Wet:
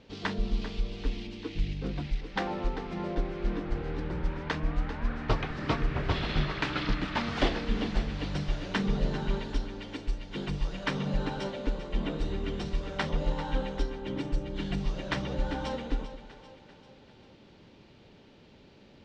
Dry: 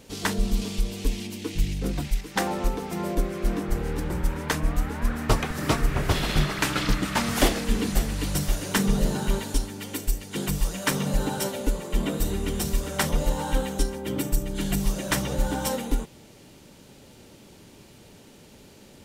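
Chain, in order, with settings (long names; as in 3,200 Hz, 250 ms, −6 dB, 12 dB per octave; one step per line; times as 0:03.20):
low-pass filter 4,400 Hz 24 dB per octave
echo with a time of its own for lows and highs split 390 Hz, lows 108 ms, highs 393 ms, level −12.5 dB
level −5.5 dB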